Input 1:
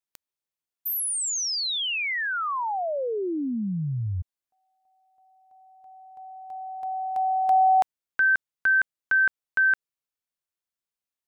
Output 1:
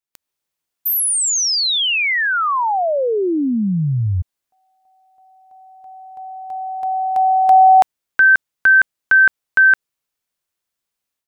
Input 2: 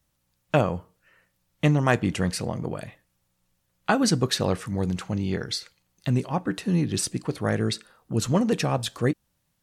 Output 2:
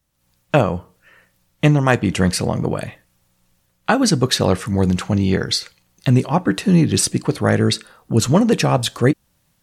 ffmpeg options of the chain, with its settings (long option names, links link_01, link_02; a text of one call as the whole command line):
ffmpeg -i in.wav -af "dynaudnorm=framelen=130:gausssize=3:maxgain=10dB" out.wav